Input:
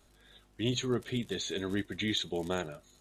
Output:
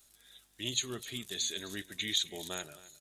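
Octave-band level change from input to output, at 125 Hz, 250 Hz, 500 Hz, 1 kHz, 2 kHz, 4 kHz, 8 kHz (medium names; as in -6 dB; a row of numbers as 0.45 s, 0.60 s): -11.0 dB, -11.0 dB, -10.0 dB, -7.0 dB, -2.0 dB, +2.5 dB, +7.5 dB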